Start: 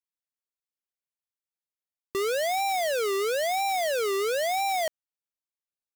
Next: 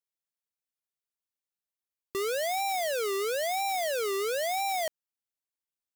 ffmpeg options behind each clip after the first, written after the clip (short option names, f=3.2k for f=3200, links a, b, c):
-af "highshelf=f=7k:g=4,volume=-3.5dB"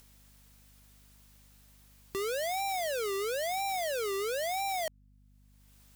-af "acompressor=mode=upward:threshold=-34dB:ratio=2.5,aeval=exprs='val(0)+0.00141*(sin(2*PI*50*n/s)+sin(2*PI*2*50*n/s)/2+sin(2*PI*3*50*n/s)/3+sin(2*PI*4*50*n/s)/4+sin(2*PI*5*50*n/s)/5)':c=same,volume=-3dB"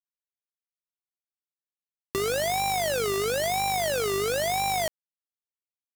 -af "acrusher=bits=6:mix=0:aa=0.000001,volume=8dB"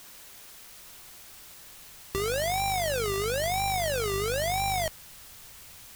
-af "aeval=exprs='val(0)+0.5*0.0211*sgn(val(0))':c=same,asubboost=boost=4.5:cutoff=130,volume=-3dB"